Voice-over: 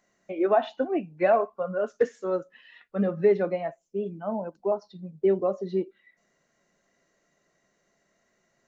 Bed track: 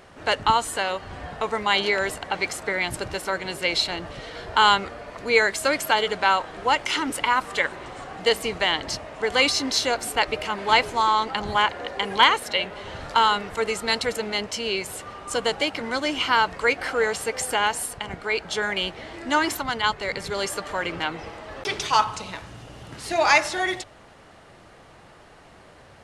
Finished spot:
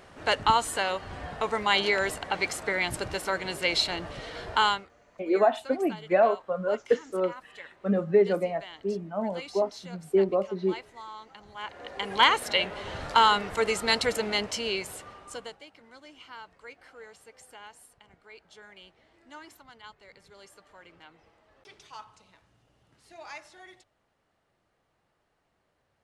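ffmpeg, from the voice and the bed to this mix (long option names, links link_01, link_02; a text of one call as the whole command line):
ffmpeg -i stem1.wav -i stem2.wav -filter_complex "[0:a]adelay=4900,volume=0dB[link_01];[1:a]volume=19dB,afade=type=out:start_time=4.49:duration=0.38:silence=0.1,afade=type=in:start_time=11.56:duration=0.95:silence=0.0841395,afade=type=out:start_time=14.34:duration=1.25:silence=0.0630957[link_02];[link_01][link_02]amix=inputs=2:normalize=0" out.wav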